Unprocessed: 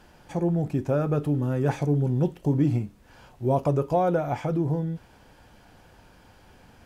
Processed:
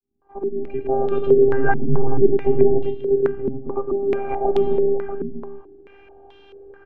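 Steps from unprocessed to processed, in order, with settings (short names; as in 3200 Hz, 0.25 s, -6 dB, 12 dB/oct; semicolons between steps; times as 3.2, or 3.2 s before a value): opening faded in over 1.40 s; HPF 150 Hz 24 dB/oct; tilt -3 dB/oct; 2.78–4.34 compressor 4:1, threshold -24 dBFS, peak gain reduction 9 dB; robotiser 398 Hz; 1.47–2.22 doubler 14 ms -2 dB; tapped delay 49/105/252/430/639 ms -17.5/-6/-17/-15.5/-8.5 dB; stepped low-pass 4.6 Hz 220–3400 Hz; gain +4.5 dB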